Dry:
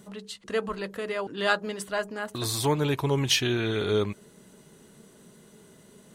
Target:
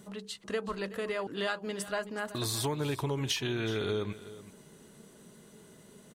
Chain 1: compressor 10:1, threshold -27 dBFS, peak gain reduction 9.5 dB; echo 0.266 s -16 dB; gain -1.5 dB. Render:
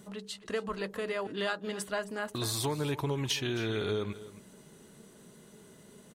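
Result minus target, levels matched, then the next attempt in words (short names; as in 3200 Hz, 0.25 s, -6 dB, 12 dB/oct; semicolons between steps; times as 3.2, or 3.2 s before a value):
echo 0.11 s early
compressor 10:1, threshold -27 dBFS, peak gain reduction 9.5 dB; echo 0.376 s -16 dB; gain -1.5 dB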